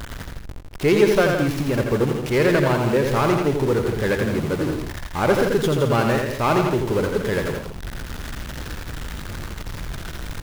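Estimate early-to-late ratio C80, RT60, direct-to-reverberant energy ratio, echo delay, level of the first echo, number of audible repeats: no reverb, no reverb, no reverb, 85 ms, -5.0 dB, 3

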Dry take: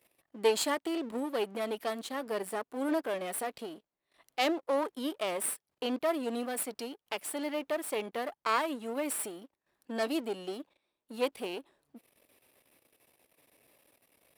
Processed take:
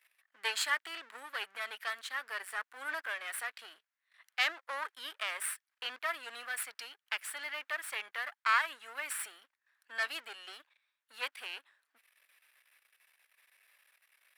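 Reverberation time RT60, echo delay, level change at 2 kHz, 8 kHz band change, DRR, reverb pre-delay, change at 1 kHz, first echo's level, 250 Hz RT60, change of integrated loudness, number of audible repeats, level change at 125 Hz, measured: no reverb, no echo, +6.5 dB, -3.5 dB, no reverb, no reverb, -3.0 dB, no echo, no reverb, -3.0 dB, no echo, no reading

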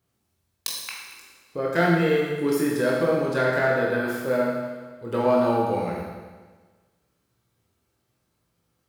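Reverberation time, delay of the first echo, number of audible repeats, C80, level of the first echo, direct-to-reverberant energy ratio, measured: 1.4 s, no echo, no echo, 2.5 dB, no echo, -3.5 dB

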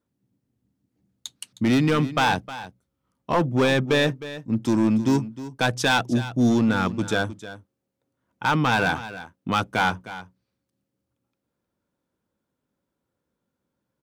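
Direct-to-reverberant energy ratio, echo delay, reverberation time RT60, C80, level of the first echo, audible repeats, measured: no reverb, 311 ms, no reverb, no reverb, -14.5 dB, 1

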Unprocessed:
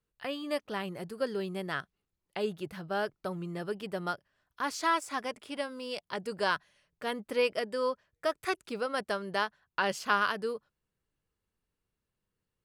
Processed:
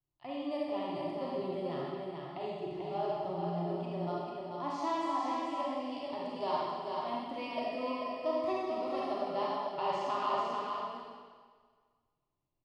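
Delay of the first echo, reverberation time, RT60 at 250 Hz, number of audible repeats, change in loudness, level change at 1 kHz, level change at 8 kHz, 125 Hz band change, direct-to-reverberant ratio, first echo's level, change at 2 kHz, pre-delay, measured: 440 ms, 1.6 s, 1.4 s, 1, -2.0 dB, 0.0 dB, under -10 dB, +0.5 dB, -7.0 dB, -4.0 dB, -13.5 dB, 33 ms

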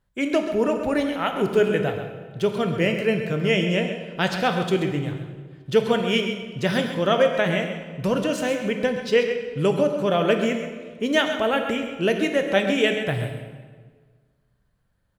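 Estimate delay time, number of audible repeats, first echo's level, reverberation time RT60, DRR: 132 ms, 1, -10.0 dB, 1.5 s, 4.0 dB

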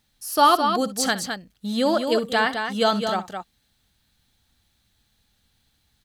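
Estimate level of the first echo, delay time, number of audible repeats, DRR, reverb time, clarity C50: -16.0 dB, 63 ms, 2, no reverb, no reverb, no reverb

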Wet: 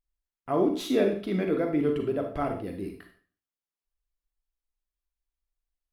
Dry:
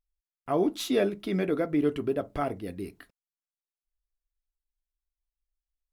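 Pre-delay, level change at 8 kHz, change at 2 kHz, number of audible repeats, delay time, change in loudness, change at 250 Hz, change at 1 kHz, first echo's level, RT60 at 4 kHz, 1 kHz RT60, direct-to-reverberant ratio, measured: 34 ms, no reading, -0.5 dB, no echo, no echo, +1.0 dB, +1.0 dB, +0.5 dB, no echo, 0.40 s, 0.40 s, 4.0 dB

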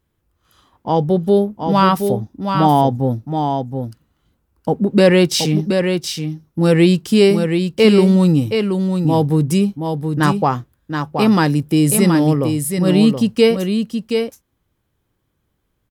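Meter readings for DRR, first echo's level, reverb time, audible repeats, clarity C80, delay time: no reverb, -6.0 dB, no reverb, 1, no reverb, 724 ms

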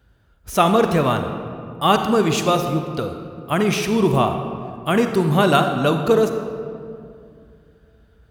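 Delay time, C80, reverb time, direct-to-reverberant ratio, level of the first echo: no echo, 7.5 dB, 2.4 s, 6.0 dB, no echo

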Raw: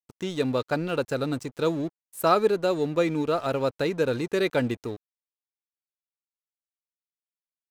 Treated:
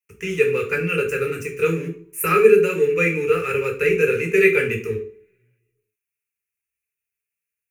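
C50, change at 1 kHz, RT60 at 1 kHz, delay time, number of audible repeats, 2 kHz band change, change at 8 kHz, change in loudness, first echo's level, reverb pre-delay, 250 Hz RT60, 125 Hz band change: 9.0 dB, +1.0 dB, 0.50 s, no echo, no echo, +13.0 dB, +8.5 dB, +7.0 dB, no echo, 3 ms, 0.55 s, +4.0 dB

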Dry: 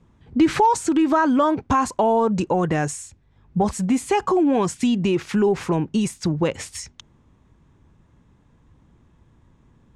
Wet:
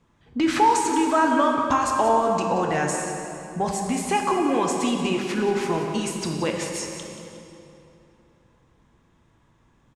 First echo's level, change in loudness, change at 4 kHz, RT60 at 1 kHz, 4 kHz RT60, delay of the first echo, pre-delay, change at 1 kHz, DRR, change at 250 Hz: -11.5 dB, -2.0 dB, +2.0 dB, 2.9 s, 2.1 s, 180 ms, 3 ms, +0.5 dB, 1.0 dB, -4.5 dB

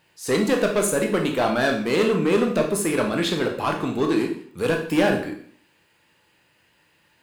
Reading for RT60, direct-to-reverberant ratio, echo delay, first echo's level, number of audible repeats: 0.55 s, 1.5 dB, no echo, no echo, no echo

